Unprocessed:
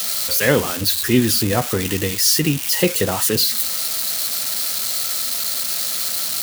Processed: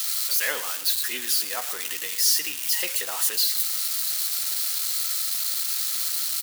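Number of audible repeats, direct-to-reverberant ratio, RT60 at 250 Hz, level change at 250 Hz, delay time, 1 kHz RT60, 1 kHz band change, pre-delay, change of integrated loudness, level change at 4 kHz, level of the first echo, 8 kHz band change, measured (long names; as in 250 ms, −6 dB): 2, no reverb audible, no reverb audible, −28.5 dB, 114 ms, no reverb audible, −9.5 dB, no reverb audible, −5.0 dB, −5.0 dB, −14.5 dB, −4.0 dB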